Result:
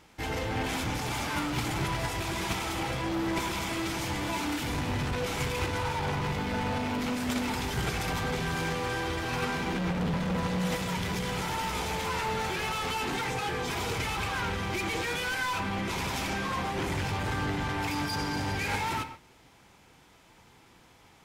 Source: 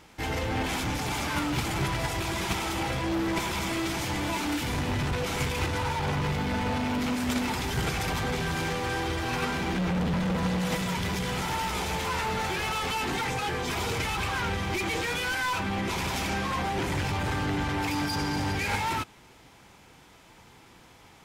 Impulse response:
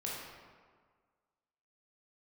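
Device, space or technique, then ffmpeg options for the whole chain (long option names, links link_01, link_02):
keyed gated reverb: -filter_complex "[0:a]asplit=3[link_01][link_02][link_03];[1:a]atrim=start_sample=2205[link_04];[link_02][link_04]afir=irnorm=-1:irlink=0[link_05];[link_03]apad=whole_len=936782[link_06];[link_05][link_06]sidechaingate=range=-33dB:threshold=-46dB:ratio=16:detection=peak,volume=-9dB[link_07];[link_01][link_07]amix=inputs=2:normalize=0,volume=-4dB"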